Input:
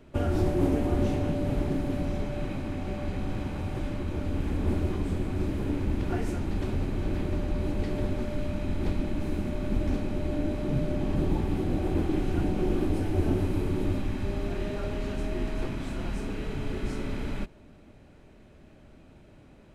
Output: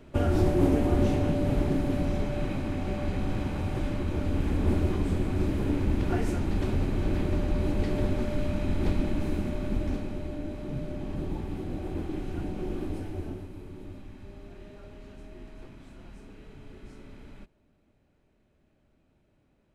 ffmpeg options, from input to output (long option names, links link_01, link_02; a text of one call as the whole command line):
ffmpeg -i in.wav -af "volume=2dB,afade=type=out:start_time=9.07:duration=1.3:silence=0.375837,afade=type=out:start_time=12.94:duration=0.54:silence=0.375837" out.wav